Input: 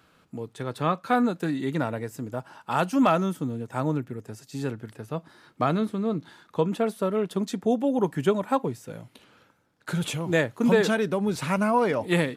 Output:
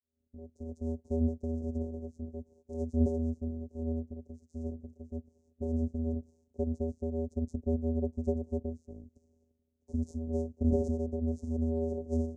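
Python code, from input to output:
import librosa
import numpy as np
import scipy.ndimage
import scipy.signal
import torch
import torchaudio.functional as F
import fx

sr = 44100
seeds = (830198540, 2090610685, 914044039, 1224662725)

y = fx.fade_in_head(x, sr, length_s=0.68)
y = fx.vocoder(y, sr, bands=4, carrier='square', carrier_hz=80.7)
y = scipy.signal.sosfilt(scipy.signal.ellip(3, 1.0, 50, [540.0, 6300.0], 'bandstop', fs=sr, output='sos'), y)
y = y * librosa.db_to_amplitude(-6.0)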